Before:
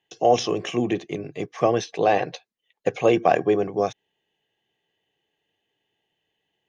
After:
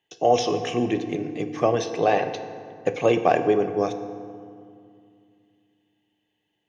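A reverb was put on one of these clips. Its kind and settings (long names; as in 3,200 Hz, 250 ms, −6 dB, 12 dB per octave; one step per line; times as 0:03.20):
feedback delay network reverb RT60 2.3 s, low-frequency decay 1.45×, high-frequency decay 0.55×, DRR 8 dB
level −1 dB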